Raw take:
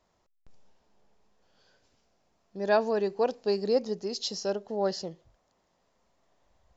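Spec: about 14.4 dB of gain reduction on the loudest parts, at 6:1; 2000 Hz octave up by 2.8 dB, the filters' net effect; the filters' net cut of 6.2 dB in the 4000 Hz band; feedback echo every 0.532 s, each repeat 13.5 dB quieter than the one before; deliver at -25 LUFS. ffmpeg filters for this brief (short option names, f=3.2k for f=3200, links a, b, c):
-af "equalizer=f=2k:t=o:g=5.5,equalizer=f=4k:t=o:g=-9,acompressor=threshold=-35dB:ratio=6,aecho=1:1:532|1064:0.211|0.0444,volume=15dB"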